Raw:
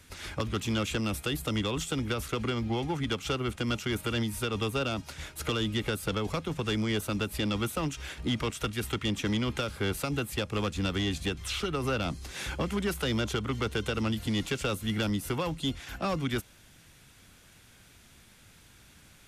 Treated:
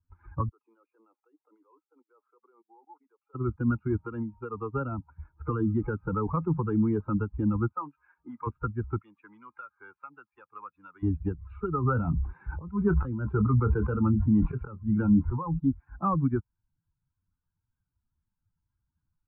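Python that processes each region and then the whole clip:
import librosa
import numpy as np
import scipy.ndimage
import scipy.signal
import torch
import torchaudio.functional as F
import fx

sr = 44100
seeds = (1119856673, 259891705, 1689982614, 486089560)

y = fx.chain(x, sr, fx.highpass(hz=390.0, slope=24),
    fx.peak_eq(hz=1500.0, db=-3.5, octaves=1.4),
    fx.level_steps(step_db=23), at=(0.49, 3.35))
y = fx.chain(y, sr, fx.low_shelf(hz=180.0, db=-9.0),
    fx.notch(hz=1500.0, q=9.7), at=(4.04, 4.74))
y = fx.chain(y, sr, fx.peak_eq(hz=63.0, db=-8.5, octaves=1.1),
    fx.env_flatten(amount_pct=50), at=(5.59, 7.15))
y = fx.chain(y, sr, fx.highpass(hz=760.0, slope=6),
    fx.doubler(ms=21.0, db=-12.0), at=(7.72, 8.47))
y = fx.chain(y, sr, fx.highpass(hz=1500.0, slope=6),
    fx.high_shelf(hz=4400.0, db=8.5), at=(9.01, 11.03))
y = fx.chain(y, sr, fx.auto_swell(attack_ms=262.0),
    fx.doubler(ms=24.0, db=-10.5),
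    fx.sustainer(db_per_s=26.0), at=(11.78, 15.59))
y = fx.bin_expand(y, sr, power=2.0)
y = scipy.signal.sosfilt(scipy.signal.butter(6, 1300.0, 'lowpass', fs=sr, output='sos'), y)
y = y + 0.76 * np.pad(y, (int(0.8 * sr / 1000.0), 0))[:len(y)]
y = F.gain(torch.from_numpy(y), 6.5).numpy()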